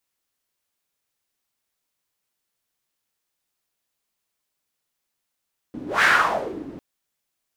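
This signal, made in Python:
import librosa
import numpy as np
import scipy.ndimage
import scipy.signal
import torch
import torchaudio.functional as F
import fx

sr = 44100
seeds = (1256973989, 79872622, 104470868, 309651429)

y = fx.whoosh(sr, seeds[0], length_s=1.05, peak_s=0.29, rise_s=0.18, fall_s=0.66, ends_hz=280.0, peak_hz=1700.0, q=4.4, swell_db=20.0)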